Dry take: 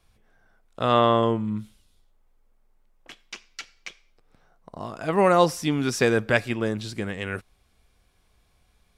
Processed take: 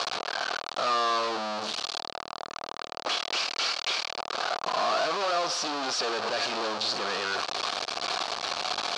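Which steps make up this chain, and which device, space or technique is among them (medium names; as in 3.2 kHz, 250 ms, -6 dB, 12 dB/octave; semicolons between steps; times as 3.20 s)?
home computer beeper (one-bit comparator; cabinet simulation 500–5700 Hz, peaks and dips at 710 Hz +6 dB, 1.2 kHz +6 dB, 2 kHz -7 dB, 4.4 kHz +7 dB)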